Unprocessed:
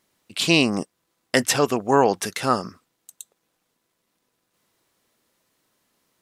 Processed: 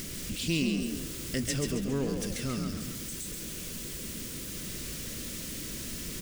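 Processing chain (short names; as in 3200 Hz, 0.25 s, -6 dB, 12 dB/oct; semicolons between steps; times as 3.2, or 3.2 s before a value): zero-crossing step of -21 dBFS; thirty-one-band EQ 100 Hz -10 dB, 800 Hz -10 dB, 4000 Hz -3 dB, 12500 Hz -6 dB; in parallel at +2.5 dB: upward compressor, threshold -22 dBFS; on the sum: passive tone stack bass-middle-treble 10-0-1; on a send: frequency-shifting echo 0.136 s, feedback 43%, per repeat +30 Hz, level -5 dB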